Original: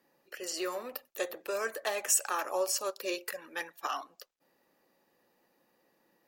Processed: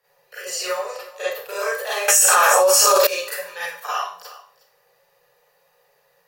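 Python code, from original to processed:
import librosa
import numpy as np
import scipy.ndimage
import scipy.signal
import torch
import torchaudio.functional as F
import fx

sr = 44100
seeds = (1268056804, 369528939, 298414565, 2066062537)

p1 = scipy.signal.sosfilt(scipy.signal.ellip(3, 1.0, 40, [160.0, 430.0], 'bandstop', fs=sr, output='sos'), x)
p2 = 10.0 ** (-21.5 / 20.0) * np.tanh(p1 / 10.0 ** (-21.5 / 20.0))
p3 = p1 + F.gain(torch.from_numpy(p2), -9.0).numpy()
p4 = fx.air_absorb(p3, sr, metres=69.0, at=(0.68, 1.31))
p5 = p4 + fx.echo_single(p4, sr, ms=362, db=-18.5, dry=0)
p6 = fx.rev_schroeder(p5, sr, rt60_s=0.44, comb_ms=31, drr_db=-9.5)
p7 = fx.env_flatten(p6, sr, amount_pct=100, at=(2.08, 3.07))
y = F.gain(torch.from_numpy(p7), -1.5).numpy()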